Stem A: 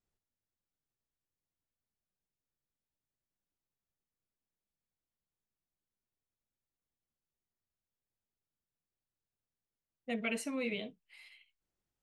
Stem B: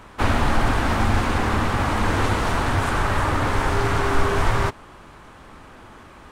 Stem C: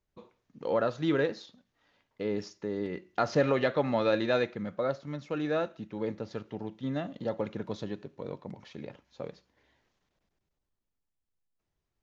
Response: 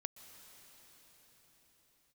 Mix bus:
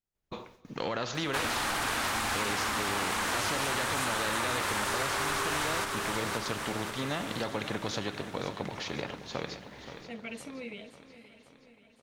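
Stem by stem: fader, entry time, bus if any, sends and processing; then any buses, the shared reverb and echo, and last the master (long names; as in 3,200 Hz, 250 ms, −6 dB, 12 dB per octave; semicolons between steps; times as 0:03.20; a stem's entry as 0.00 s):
−8.5 dB, 0.00 s, send −4 dB, echo send −12.5 dB, no processing
−4.5 dB, 1.15 s, no send, echo send −7.5 dB, spectral tilt +4 dB per octave
+2.5 dB, 0.15 s, send −3.5 dB, echo send −9 dB, brickwall limiter −21 dBFS, peak gain reduction 6.5 dB; noise gate with hold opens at −60 dBFS; every bin compressed towards the loudest bin 2 to 1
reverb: on, pre-delay 114 ms
echo: repeating echo 528 ms, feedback 57%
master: downward compressor 4 to 1, threshold −28 dBFS, peak gain reduction 6.5 dB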